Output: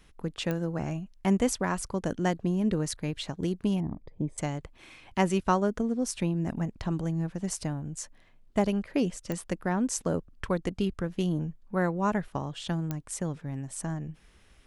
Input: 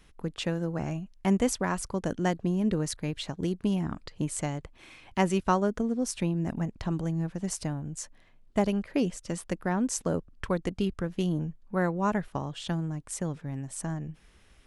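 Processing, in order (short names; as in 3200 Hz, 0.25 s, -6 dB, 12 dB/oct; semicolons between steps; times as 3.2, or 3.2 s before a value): 3.8–4.38 running mean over 31 samples; pops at 0.51/9.32/12.91, -18 dBFS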